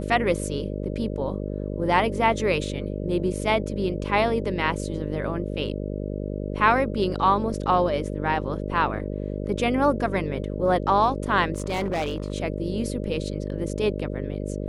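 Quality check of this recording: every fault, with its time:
mains buzz 50 Hz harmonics 12 −30 dBFS
0:11.56–0:12.32: clipping −22 dBFS

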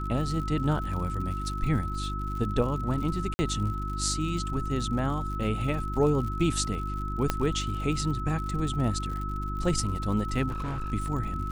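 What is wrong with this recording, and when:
surface crackle 80 per second −36 dBFS
mains hum 50 Hz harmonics 7 −33 dBFS
whistle 1,300 Hz −35 dBFS
0:03.34–0:03.39: drop-out 50 ms
0:07.30: click −10 dBFS
0:10.49–0:10.93: clipping −28.5 dBFS

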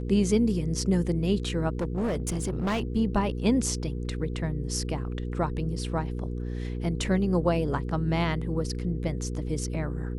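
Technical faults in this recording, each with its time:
mains hum 60 Hz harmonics 8 −32 dBFS
0:01.70–0:02.83: clipping −24 dBFS

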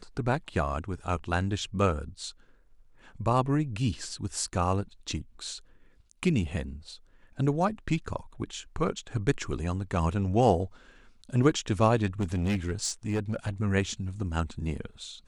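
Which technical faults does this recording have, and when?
0:12.20–0:13.50: clipping −24 dBFS

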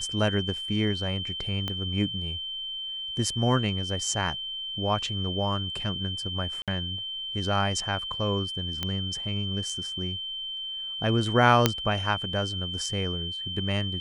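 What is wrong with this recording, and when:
whistle 3,100 Hz −32 dBFS
0:01.68: click −17 dBFS
0:06.62–0:06.68: drop-out 57 ms
0:08.83: click −14 dBFS
0:11.66: click −3 dBFS

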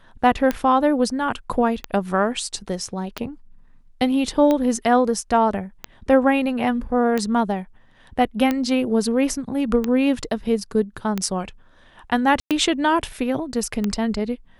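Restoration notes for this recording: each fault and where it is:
scratch tick 45 rpm −9 dBFS
0:12.40–0:12.51: drop-out 107 ms

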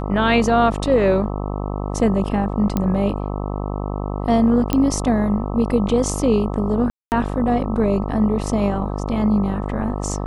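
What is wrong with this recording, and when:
mains buzz 50 Hz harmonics 26 −25 dBFS
0:02.77: click −8 dBFS
0:04.73: click −5 dBFS
0:06.90–0:07.12: drop-out 219 ms

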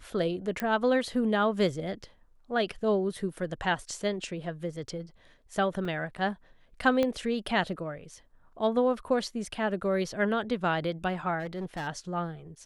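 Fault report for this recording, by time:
0:00.60: click −16 dBFS
0:05.85: drop-out 2.9 ms
0:07.03: click −15 dBFS
0:11.39–0:11.88: clipping −30.5 dBFS

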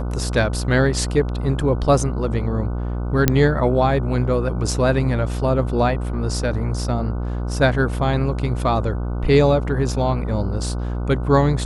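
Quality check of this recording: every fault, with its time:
mains buzz 60 Hz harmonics 25 −24 dBFS
0:03.28: click 0 dBFS

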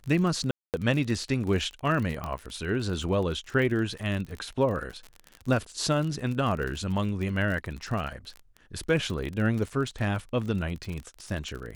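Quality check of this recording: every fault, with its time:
surface crackle 36 per second −32 dBFS
0:00.51–0:00.74: drop-out 228 ms
0:02.24: click −20 dBFS

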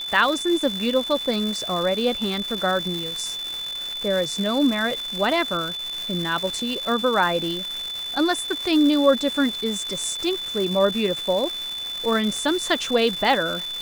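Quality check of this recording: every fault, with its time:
surface crackle 550 per second −27 dBFS
whistle 3,500 Hz −28 dBFS

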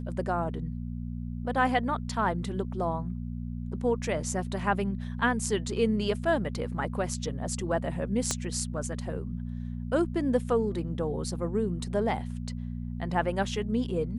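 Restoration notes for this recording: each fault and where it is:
mains hum 60 Hz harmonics 4 −35 dBFS
0:08.31: click −13 dBFS

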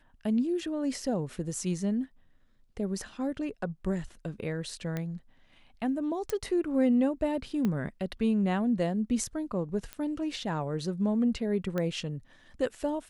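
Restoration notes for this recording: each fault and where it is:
0:04.97: click −20 dBFS
0:06.30: click
0:07.65: click −18 dBFS
0:09.93: click −22 dBFS
0:11.78: click −19 dBFS

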